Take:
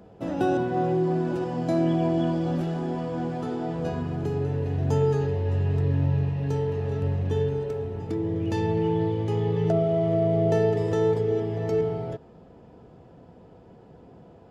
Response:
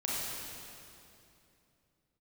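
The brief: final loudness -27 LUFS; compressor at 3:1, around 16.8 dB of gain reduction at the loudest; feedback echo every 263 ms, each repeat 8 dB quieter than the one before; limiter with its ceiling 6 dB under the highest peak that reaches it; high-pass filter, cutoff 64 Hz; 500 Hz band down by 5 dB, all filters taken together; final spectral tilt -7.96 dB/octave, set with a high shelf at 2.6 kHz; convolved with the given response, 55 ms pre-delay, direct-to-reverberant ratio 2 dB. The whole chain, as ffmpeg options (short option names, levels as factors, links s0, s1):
-filter_complex "[0:a]highpass=64,equalizer=f=500:t=o:g=-6.5,highshelf=f=2600:g=-4,acompressor=threshold=0.00562:ratio=3,alimiter=level_in=3.98:limit=0.0631:level=0:latency=1,volume=0.251,aecho=1:1:263|526|789|1052|1315:0.398|0.159|0.0637|0.0255|0.0102,asplit=2[s0][s1];[1:a]atrim=start_sample=2205,adelay=55[s2];[s1][s2]afir=irnorm=-1:irlink=0,volume=0.398[s3];[s0][s3]amix=inputs=2:normalize=0,volume=5.96"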